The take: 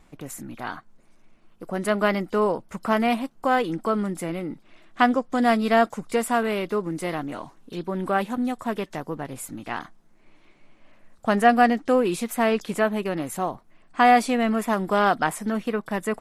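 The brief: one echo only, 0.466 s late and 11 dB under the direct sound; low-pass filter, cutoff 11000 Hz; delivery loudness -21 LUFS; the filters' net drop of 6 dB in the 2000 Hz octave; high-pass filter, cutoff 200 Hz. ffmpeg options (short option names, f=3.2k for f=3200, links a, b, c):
-af "highpass=200,lowpass=11k,equalizer=f=2k:t=o:g=-8,aecho=1:1:466:0.282,volume=4dB"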